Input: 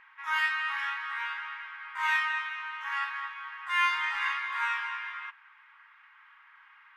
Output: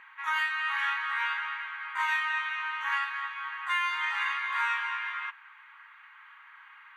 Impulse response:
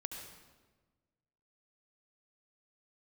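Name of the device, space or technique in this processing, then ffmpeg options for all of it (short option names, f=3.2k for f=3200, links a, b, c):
PA system with an anti-feedback notch: -filter_complex "[0:a]highpass=f=120:p=1,asuperstop=centerf=5200:order=8:qfactor=7.1,alimiter=limit=-23.5dB:level=0:latency=1:release=469,asettb=1/sr,asplit=3[a][b][c];[a]atrim=end=2.974[d];[b]atrim=start=2.97:end=3.37,asetpts=PTS-STARTPTS,afade=t=in:d=0.004:c=qsin,afade=t=out:st=0.396:d=0.004:c=qsin,lowshelf=f=430:g=-11[e];[c]atrim=start=3.366[f];[d][e]acrossfade=d=0.004:c1=hsin:c2=qsin[g];[g][f]acrossfade=d=0.004:c1=qsin:c2=hsin,volume=4.5dB"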